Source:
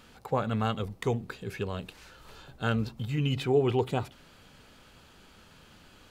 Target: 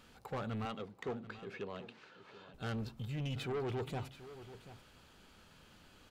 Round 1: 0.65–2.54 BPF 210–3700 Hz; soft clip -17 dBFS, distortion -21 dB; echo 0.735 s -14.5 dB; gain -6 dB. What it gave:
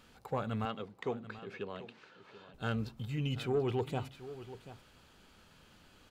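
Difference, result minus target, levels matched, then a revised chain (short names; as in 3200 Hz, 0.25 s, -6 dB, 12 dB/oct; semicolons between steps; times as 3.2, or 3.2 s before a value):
soft clip: distortion -13 dB
0.65–2.54 BPF 210–3700 Hz; soft clip -28.5 dBFS, distortion -8 dB; echo 0.735 s -14.5 dB; gain -6 dB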